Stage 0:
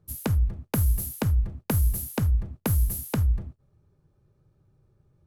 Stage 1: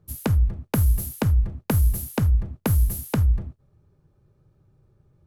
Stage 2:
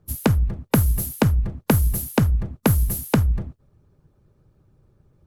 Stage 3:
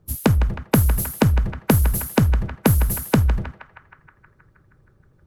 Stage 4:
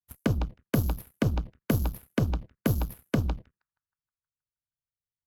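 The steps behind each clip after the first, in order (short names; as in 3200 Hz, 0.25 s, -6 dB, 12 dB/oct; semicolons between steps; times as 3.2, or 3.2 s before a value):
high shelf 4900 Hz -4 dB; gain +3.5 dB
harmonic-percussive split percussive +8 dB; gain -1.5 dB
narrowing echo 0.158 s, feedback 75%, band-pass 1500 Hz, level -8 dB; gain +1.5 dB
envelope phaser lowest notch 430 Hz, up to 1900 Hz, full sweep at -13.5 dBFS; added harmonics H 7 -17 dB, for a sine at -5 dBFS; gain -8 dB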